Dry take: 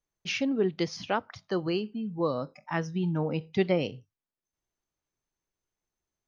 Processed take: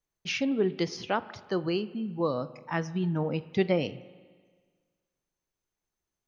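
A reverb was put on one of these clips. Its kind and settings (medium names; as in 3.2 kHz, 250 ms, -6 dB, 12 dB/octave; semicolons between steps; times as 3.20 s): spring tank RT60 1.6 s, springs 40/53 ms, chirp 40 ms, DRR 16.5 dB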